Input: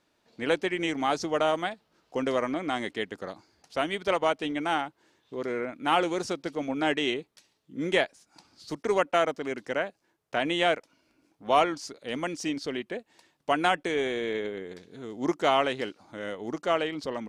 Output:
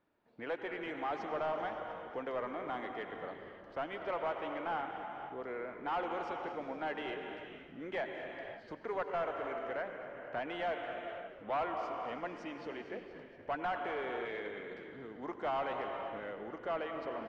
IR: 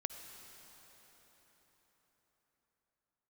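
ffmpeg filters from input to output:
-filter_complex "[0:a]asettb=1/sr,asplit=3[link_01][link_02][link_03];[link_01]atrim=end=14.254[link_04];[link_02]atrim=start=14.25:end=14.88,asetpts=PTS-STARTPTS,afade=type=in:duration=0.004:curve=qsin,afade=type=out:start_time=0.626:duration=0.004:curve=qsin,tiltshelf=frequency=640:gain=-6[link_05];[link_03]atrim=start=14.876[link_06];[link_04][link_05]acrossfade=duration=0.004:curve1=hsin:curve2=qsin[link_07];[link_07][link_06]acrossfade=duration=0.004:curve1=qsin:curve2=hsin,acrossover=split=470[link_08][link_09];[link_08]acompressor=threshold=-44dB:ratio=5[link_10];[link_10][link_09]amix=inputs=2:normalize=0[link_11];[1:a]atrim=start_sample=2205,afade=type=out:start_time=0.42:duration=0.01,atrim=end_sample=18963,asetrate=28224,aresample=44100[link_12];[link_11][link_12]afir=irnorm=-1:irlink=0,asoftclip=type=tanh:threshold=-23.5dB,lowpass=1800,asplit=2[link_13][link_14];[link_14]asplit=7[link_15][link_16][link_17][link_18][link_19][link_20][link_21];[link_15]adelay=234,afreqshift=-52,volume=-14dB[link_22];[link_16]adelay=468,afreqshift=-104,volume=-18dB[link_23];[link_17]adelay=702,afreqshift=-156,volume=-22dB[link_24];[link_18]adelay=936,afreqshift=-208,volume=-26dB[link_25];[link_19]adelay=1170,afreqshift=-260,volume=-30.1dB[link_26];[link_20]adelay=1404,afreqshift=-312,volume=-34.1dB[link_27];[link_21]adelay=1638,afreqshift=-364,volume=-38.1dB[link_28];[link_22][link_23][link_24][link_25][link_26][link_27][link_28]amix=inputs=7:normalize=0[link_29];[link_13][link_29]amix=inputs=2:normalize=0,volume=-6dB"

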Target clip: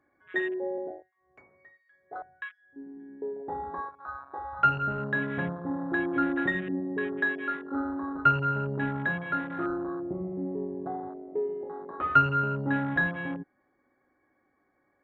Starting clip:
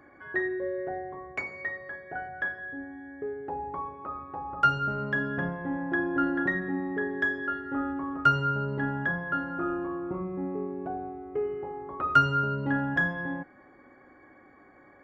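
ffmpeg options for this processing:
ffmpeg -i in.wav -filter_complex "[0:a]asettb=1/sr,asplit=3[link_01][link_02][link_03];[link_01]atrim=end=0.784[link_04];[link_02]atrim=start=0.78:end=3,asetpts=PTS-STARTPTS,afade=type=in:duration=0.004:curve=qsin,afade=type=out:start_time=2.216:duration=0.004:curve=qsin,acrossover=split=1800[link_05][link_06];[link_05]aeval=exprs='val(0)*(1-1/2+1/2*cos(2*PI*1.4*n/s))':channel_layout=same[link_07];[link_06]aeval=exprs='val(0)*(1-1/2-1/2*cos(2*PI*1.4*n/s))':channel_layout=same[link_08];[link_07][link_08]amix=inputs=2:normalize=0[link_09];[link_03]atrim=start=2.996[link_10];[link_04][link_09]acrossfade=duration=0.004:curve1=hsin:curve2=qsin[link_11];[link_11][link_10]acrossfade=duration=0.004:curve1=qsin:curve2=hsin,afwtdn=0.0224,aresample=16000,aresample=44100" out.wav

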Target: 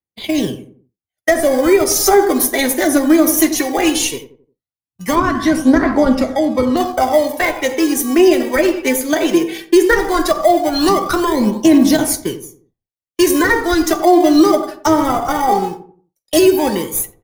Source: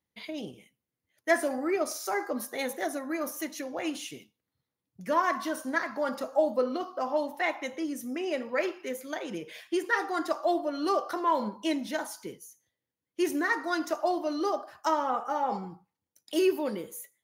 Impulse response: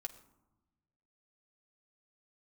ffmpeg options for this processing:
-filter_complex "[0:a]asplit=2[link_01][link_02];[link_02]acrusher=samples=32:mix=1:aa=0.000001,volume=-11.5dB[link_03];[link_01][link_03]amix=inputs=2:normalize=0,agate=range=-33dB:threshold=-38dB:ratio=3:detection=peak,acrossover=split=400[link_04][link_05];[link_05]acompressor=threshold=-33dB:ratio=6[link_06];[link_04][link_06]amix=inputs=2:normalize=0,aphaser=in_gain=1:out_gain=1:delay=3.5:decay=0.55:speed=0.17:type=triangular,asettb=1/sr,asplit=3[link_07][link_08][link_09];[link_07]atrim=end=5.154[link_10];[link_08]atrim=start=5.15:end=6.77,asetpts=PTS-STARTPTS,afade=type=in:duration=0.004:curve=qsin,afade=type=out:start_time=1.616:duration=0.004:curve=qsin,aemphasis=mode=reproduction:type=50fm[link_11];[link_09]atrim=start=6.766[link_12];[link_10][link_11]acrossfade=duration=0.004:curve1=hsin:curve2=qsin[link_13];[link_13][link_12]acrossfade=duration=0.004:curve1=qsin:curve2=hsin,asplit=2[link_14][link_15];[link_15]adelay=88,lowpass=frequency=900:poles=1,volume=-10dB,asplit=2[link_16][link_17];[link_17]adelay=88,lowpass=frequency=900:poles=1,volume=0.4,asplit=2[link_18][link_19];[link_19]adelay=88,lowpass=frequency=900:poles=1,volume=0.4,asplit=2[link_20][link_21];[link_21]adelay=88,lowpass=frequency=900:poles=1,volume=0.4[link_22];[link_14][link_16][link_18][link_20][link_22]amix=inputs=5:normalize=0,asplit=2[link_23][link_24];[1:a]atrim=start_sample=2205,atrim=end_sample=3087,highshelf=frequency=3800:gain=11.5[link_25];[link_24][link_25]afir=irnorm=-1:irlink=0,volume=2.5dB[link_26];[link_23][link_26]amix=inputs=2:normalize=0,alimiter=level_in=13dB:limit=-1dB:release=50:level=0:latency=1,volume=-1dB"

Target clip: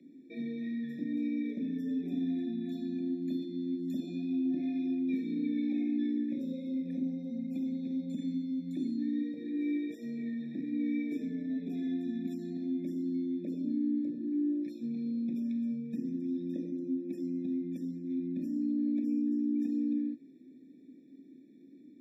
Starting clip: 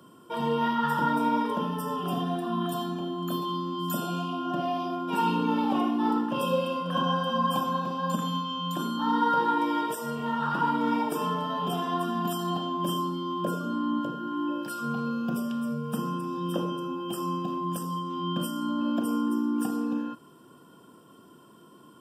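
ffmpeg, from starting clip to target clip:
ffmpeg -i in.wav -filter_complex "[0:a]aeval=exprs='0.211*(cos(1*acos(clip(val(0)/0.211,-1,1)))-cos(1*PI/2))+0.00668*(cos(2*acos(clip(val(0)/0.211,-1,1)))-cos(2*PI/2))':channel_layout=same,acrossover=split=1100|6800[link_01][link_02][link_03];[link_01]acompressor=threshold=-30dB:ratio=4[link_04];[link_02]acompressor=threshold=-39dB:ratio=4[link_05];[link_04][link_05][link_03]amix=inputs=3:normalize=0,asplit=3[link_06][link_07][link_08];[link_06]bandpass=frequency=270:width_type=q:width=8,volume=0dB[link_09];[link_07]bandpass=frequency=2290:width_type=q:width=8,volume=-6dB[link_10];[link_08]bandpass=frequency=3010:width_type=q:width=8,volume=-9dB[link_11];[link_09][link_10][link_11]amix=inputs=3:normalize=0,equalizer=frequency=120:width=5:gain=-4,afftfilt=real='re*eq(mod(floor(b*sr/1024/860),2),0)':imag='im*eq(mod(floor(b*sr/1024/860),2),0)':win_size=1024:overlap=0.75,volume=8dB" out.wav

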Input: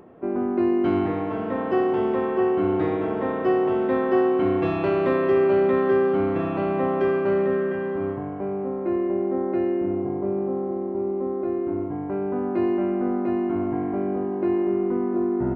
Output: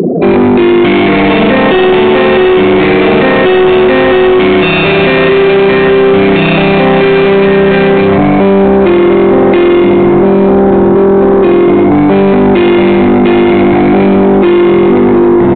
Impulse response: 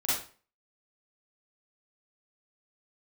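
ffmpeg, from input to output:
-filter_complex "[0:a]highshelf=frequency=1800:width_type=q:width=3:gain=10,afftfilt=real='re*gte(hypot(re,im),0.0112)':imag='im*gte(hypot(re,im),0.0112)':win_size=1024:overlap=0.75,acompressor=threshold=-25dB:ratio=8,acrusher=samples=7:mix=1:aa=0.000001,acontrast=42,equalizer=frequency=170:width_type=o:width=0.78:gain=14,asoftclip=type=tanh:threshold=-14dB,highpass=frequency=55:poles=1,asplit=2[link_01][link_02];[link_02]adelay=1188,lowpass=frequency=2200:poles=1,volume=-17.5dB,asplit=2[link_03][link_04];[link_04]adelay=1188,lowpass=frequency=2200:poles=1,volume=0.19[link_05];[link_03][link_05]amix=inputs=2:normalize=0[link_06];[link_01][link_06]amix=inputs=2:normalize=0,asplit=2[link_07][link_08];[link_08]highpass=frequency=720:poles=1,volume=31dB,asoftclip=type=tanh:threshold=-4dB[link_09];[link_07][link_09]amix=inputs=2:normalize=0,lowpass=frequency=1900:poles=1,volume=-6dB,aresample=8000,aresample=44100,alimiter=level_in=16dB:limit=-1dB:release=50:level=0:latency=1,volume=-1dB"

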